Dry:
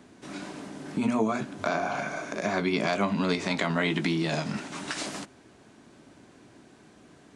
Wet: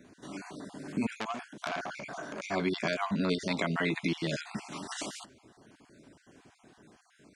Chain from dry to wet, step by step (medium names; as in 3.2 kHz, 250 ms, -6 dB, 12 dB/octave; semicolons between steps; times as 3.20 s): random holes in the spectrogram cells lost 34%; 1.14–2.43 s: transformer saturation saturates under 3.4 kHz; trim -2.5 dB